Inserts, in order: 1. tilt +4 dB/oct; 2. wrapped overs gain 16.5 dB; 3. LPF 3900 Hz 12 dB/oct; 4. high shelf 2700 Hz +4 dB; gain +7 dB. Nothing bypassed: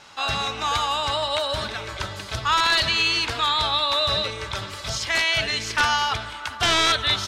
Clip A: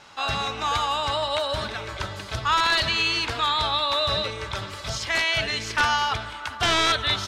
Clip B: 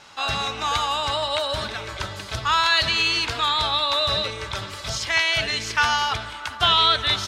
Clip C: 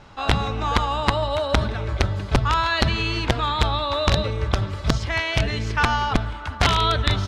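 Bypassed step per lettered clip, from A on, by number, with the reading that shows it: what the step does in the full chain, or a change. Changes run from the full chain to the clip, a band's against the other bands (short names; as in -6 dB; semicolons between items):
4, 8 kHz band -3.0 dB; 2, distortion -7 dB; 1, 125 Hz band +13.0 dB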